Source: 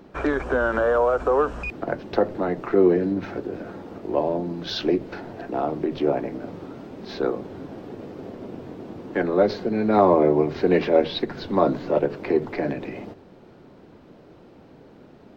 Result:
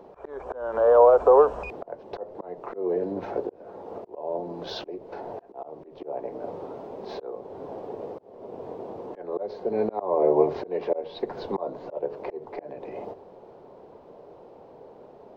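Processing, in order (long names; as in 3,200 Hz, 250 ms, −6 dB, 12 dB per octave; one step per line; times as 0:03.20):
flat-topped bell 650 Hz +13.5 dB
volume swells 483 ms
level −8 dB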